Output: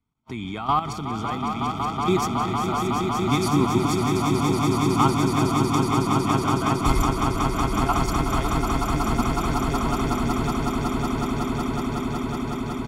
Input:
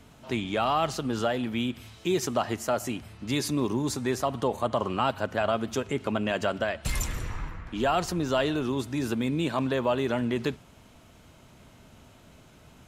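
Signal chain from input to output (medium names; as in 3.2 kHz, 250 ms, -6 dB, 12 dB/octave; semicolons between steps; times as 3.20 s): gate -43 dBFS, range -32 dB; treble shelf 2 kHz -5.5 dB; comb 0.9 ms, depth 79%; level held to a coarse grid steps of 12 dB; echo with a slow build-up 185 ms, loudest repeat 8, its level -6 dB; trim +5 dB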